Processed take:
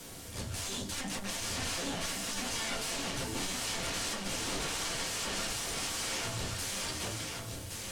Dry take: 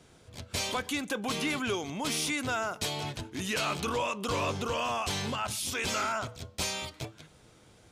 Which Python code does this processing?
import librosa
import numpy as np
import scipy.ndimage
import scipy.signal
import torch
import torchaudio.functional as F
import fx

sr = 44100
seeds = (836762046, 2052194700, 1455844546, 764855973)

p1 = fx.spec_erase(x, sr, start_s=0.67, length_s=0.25, low_hz=450.0, high_hz=3300.0)
p2 = 10.0 ** (-39.0 / 20.0) * (np.abs((p1 / 10.0 ** (-39.0 / 20.0) + 3.0) % 4.0 - 2.0) - 1.0)
p3 = fx.quant_dither(p2, sr, seeds[0], bits=8, dither='triangular')
p4 = p2 + (p3 * librosa.db_to_amplitude(-4.0))
p5 = fx.env_lowpass_down(p4, sr, base_hz=790.0, full_db=-22.5)
p6 = fx.peak_eq(p5, sr, hz=8400.0, db=4.5, octaves=1.4)
p7 = fx.room_shoebox(p6, sr, seeds[1], volume_m3=120.0, walls='furnished', distance_m=1.7)
p8 = fx.tube_stage(p7, sr, drive_db=25.0, bias=0.35)
y = p8 + fx.echo_single(p8, sr, ms=1120, db=-4.5, dry=0)